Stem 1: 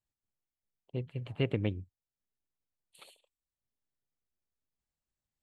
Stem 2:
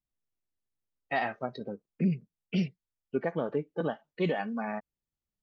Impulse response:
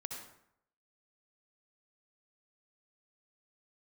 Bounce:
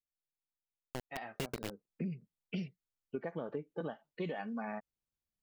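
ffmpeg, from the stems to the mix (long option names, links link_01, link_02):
-filter_complex "[0:a]equalizer=frequency=110:width_type=o:width=0.37:gain=-11,acrusher=bits=4:mix=0:aa=0.000001,volume=-2dB[link_01];[1:a]volume=-4dB,afade=type=in:start_time=1.27:duration=0.65:silence=0.316228[link_02];[link_01][link_02]amix=inputs=2:normalize=0,acompressor=threshold=-35dB:ratio=6"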